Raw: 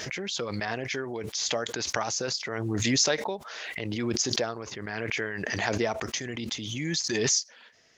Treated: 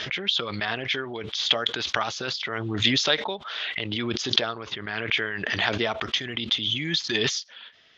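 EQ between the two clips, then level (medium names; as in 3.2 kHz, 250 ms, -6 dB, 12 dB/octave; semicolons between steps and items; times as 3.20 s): resonant low-pass 3.4 kHz, resonance Q 5.1; peaking EQ 1.3 kHz +5.5 dB 0.61 oct; band-stop 500 Hz, Q 16; 0.0 dB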